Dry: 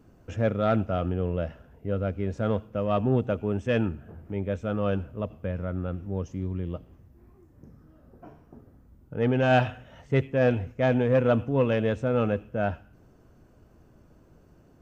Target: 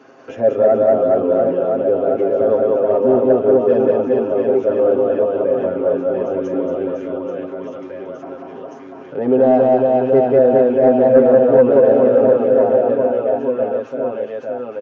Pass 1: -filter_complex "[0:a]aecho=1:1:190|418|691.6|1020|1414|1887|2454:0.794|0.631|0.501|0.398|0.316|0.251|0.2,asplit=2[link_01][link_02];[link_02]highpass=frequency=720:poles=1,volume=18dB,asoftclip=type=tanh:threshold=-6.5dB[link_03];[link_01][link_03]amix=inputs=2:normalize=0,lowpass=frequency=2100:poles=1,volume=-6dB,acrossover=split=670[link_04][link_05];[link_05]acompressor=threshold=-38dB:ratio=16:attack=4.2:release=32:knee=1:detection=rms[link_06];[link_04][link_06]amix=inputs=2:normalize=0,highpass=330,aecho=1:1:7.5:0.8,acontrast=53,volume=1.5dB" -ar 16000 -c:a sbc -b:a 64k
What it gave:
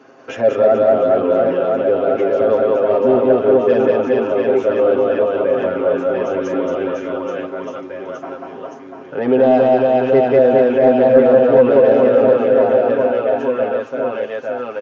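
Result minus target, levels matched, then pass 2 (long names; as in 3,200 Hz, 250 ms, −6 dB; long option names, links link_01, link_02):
downward compressor: peak gain reduction −11.5 dB
-filter_complex "[0:a]aecho=1:1:190|418|691.6|1020|1414|1887|2454:0.794|0.631|0.501|0.398|0.316|0.251|0.2,asplit=2[link_01][link_02];[link_02]highpass=frequency=720:poles=1,volume=18dB,asoftclip=type=tanh:threshold=-6.5dB[link_03];[link_01][link_03]amix=inputs=2:normalize=0,lowpass=frequency=2100:poles=1,volume=-6dB,acrossover=split=670[link_04][link_05];[link_05]acompressor=threshold=-50dB:ratio=16:attack=4.2:release=32:knee=1:detection=rms[link_06];[link_04][link_06]amix=inputs=2:normalize=0,highpass=330,aecho=1:1:7.5:0.8,acontrast=53,volume=1.5dB" -ar 16000 -c:a sbc -b:a 64k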